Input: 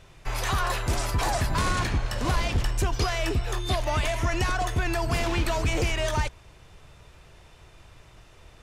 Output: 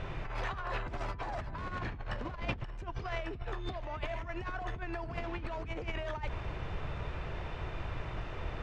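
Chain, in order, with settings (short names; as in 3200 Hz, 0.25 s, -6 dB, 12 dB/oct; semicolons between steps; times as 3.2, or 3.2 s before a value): limiter -27.5 dBFS, peak gain reduction 11 dB; LPF 2300 Hz 12 dB/oct; negative-ratio compressor -40 dBFS, ratio -0.5; gain +5.5 dB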